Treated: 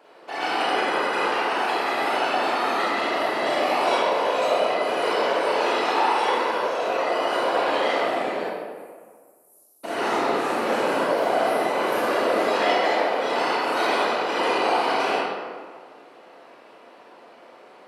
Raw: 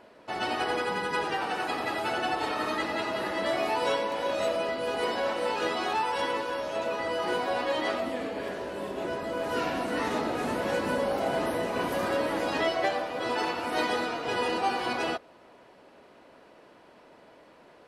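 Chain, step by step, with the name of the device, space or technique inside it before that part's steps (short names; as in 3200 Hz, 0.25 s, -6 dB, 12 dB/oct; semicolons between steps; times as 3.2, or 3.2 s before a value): 8.43–9.84 inverse Chebyshev band-stop 140–2300 Hz, stop band 80 dB; whispering ghost (whisperiser; HPF 360 Hz 12 dB/oct; reverb RT60 1.8 s, pre-delay 27 ms, DRR -6.5 dB)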